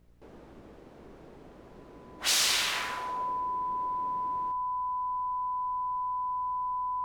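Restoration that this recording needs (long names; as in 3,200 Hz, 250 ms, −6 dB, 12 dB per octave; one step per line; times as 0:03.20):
hum removal 58.5 Hz, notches 11
notch filter 1,000 Hz, Q 30
downward expander −43 dBFS, range −21 dB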